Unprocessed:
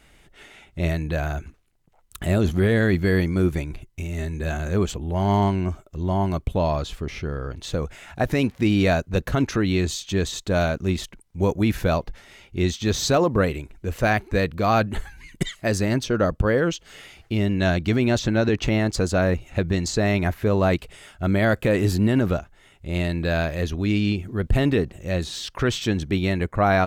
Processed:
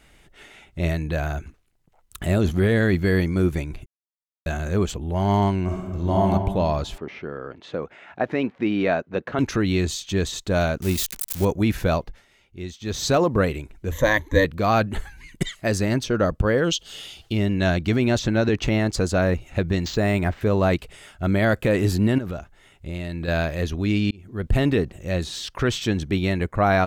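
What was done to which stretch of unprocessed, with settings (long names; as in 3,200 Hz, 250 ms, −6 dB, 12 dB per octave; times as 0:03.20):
0:02.39–0:03.14: floating-point word with a short mantissa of 8 bits
0:03.86–0:04.46: silence
0:05.64–0:06.27: thrown reverb, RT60 1.4 s, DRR −1.5 dB
0:06.98–0:09.39: band-pass filter 240–2,400 Hz
0:10.82–0:11.45: spike at every zero crossing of −19 dBFS
0:11.95–0:13.12: duck −11.5 dB, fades 0.33 s linear
0:13.91–0:14.45: EQ curve with evenly spaced ripples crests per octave 1.1, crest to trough 16 dB
0:16.64–0:17.33: high shelf with overshoot 2,600 Hz +6 dB, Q 3
0:19.80–0:20.41: linearly interpolated sample-rate reduction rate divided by 4×
0:22.18–0:23.28: downward compressor, threshold −25 dBFS
0:24.11–0:24.53: fade in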